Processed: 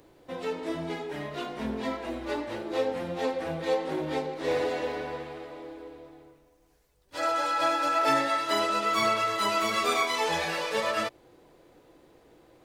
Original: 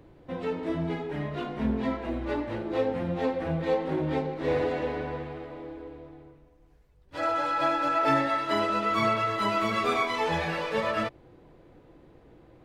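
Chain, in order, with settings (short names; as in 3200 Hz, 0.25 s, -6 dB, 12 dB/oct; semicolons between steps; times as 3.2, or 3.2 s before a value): tone controls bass -10 dB, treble +12 dB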